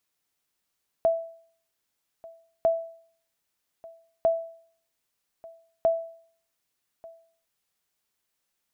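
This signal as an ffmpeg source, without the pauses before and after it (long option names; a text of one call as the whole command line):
ffmpeg -f lavfi -i "aevalsrc='0.178*(sin(2*PI*661*mod(t,1.6))*exp(-6.91*mod(t,1.6)/0.54)+0.0708*sin(2*PI*661*max(mod(t,1.6)-1.19,0))*exp(-6.91*max(mod(t,1.6)-1.19,0)/0.54))':duration=6.4:sample_rate=44100" out.wav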